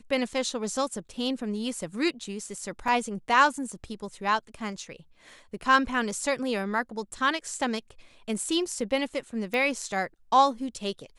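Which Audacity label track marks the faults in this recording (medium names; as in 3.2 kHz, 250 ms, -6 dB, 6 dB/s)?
2.880000	2.880000	dropout 2.4 ms
9.540000	9.540000	pop -18 dBFS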